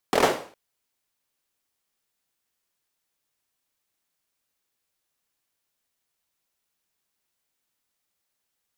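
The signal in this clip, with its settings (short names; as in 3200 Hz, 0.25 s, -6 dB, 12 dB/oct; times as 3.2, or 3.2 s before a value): hand clap length 0.41 s, bursts 5, apart 24 ms, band 500 Hz, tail 0.45 s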